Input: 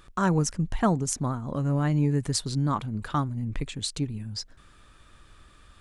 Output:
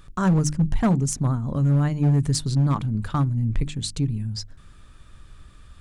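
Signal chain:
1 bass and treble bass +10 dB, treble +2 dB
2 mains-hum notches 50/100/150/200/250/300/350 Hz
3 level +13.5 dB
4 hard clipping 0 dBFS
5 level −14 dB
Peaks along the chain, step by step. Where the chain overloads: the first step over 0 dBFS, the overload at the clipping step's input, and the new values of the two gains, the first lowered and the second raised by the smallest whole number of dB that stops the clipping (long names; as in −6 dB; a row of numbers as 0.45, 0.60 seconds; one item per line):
−7.0, −7.0, +6.5, 0.0, −14.0 dBFS
step 3, 6.5 dB
step 3 +6.5 dB, step 5 −7 dB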